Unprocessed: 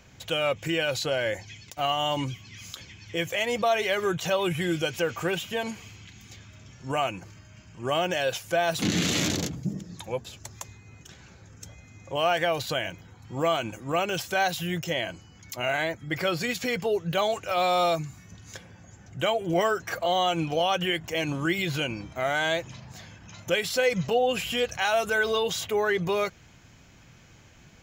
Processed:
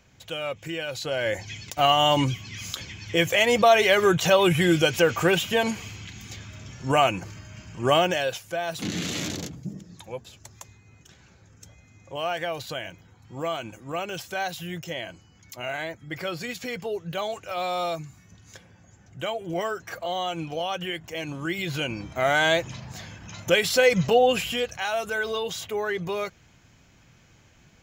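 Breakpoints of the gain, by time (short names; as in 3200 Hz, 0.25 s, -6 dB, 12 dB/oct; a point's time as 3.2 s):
0.92 s -5 dB
1.54 s +7 dB
7.92 s +7 dB
8.47 s -4.5 dB
21.35 s -4.5 dB
22.3 s +5 dB
24.26 s +5 dB
24.75 s -3 dB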